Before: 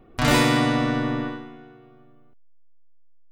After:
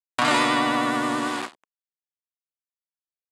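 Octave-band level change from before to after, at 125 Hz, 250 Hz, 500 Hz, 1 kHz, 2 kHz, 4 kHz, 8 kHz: -14.0, -3.5, -2.0, +3.5, +1.0, 0.0, -1.0 dB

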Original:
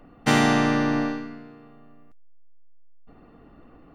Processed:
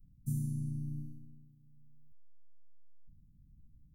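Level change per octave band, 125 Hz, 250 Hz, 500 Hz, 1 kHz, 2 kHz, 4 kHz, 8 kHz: -7.0 dB, -20.0 dB, under -40 dB, under -40 dB, under -40 dB, under -40 dB, under -15 dB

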